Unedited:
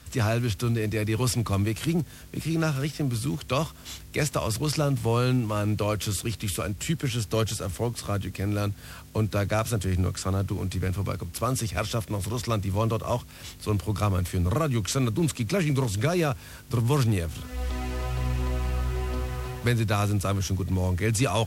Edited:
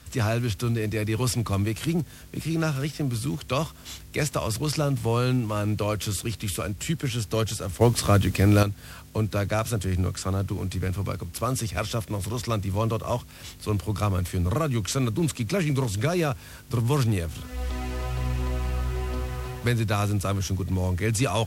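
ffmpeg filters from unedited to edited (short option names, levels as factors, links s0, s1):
-filter_complex "[0:a]asplit=3[s0][s1][s2];[s0]atrim=end=7.812[s3];[s1]atrim=start=7.808:end=8.632,asetpts=PTS-STARTPTS,volume=2.82[s4];[s2]atrim=start=8.628[s5];[s3][s4]acrossfade=d=0.004:c1=hsin:c2=hsin[s6];[s6][s5]acrossfade=d=0.004:c1=hsin:c2=hsin"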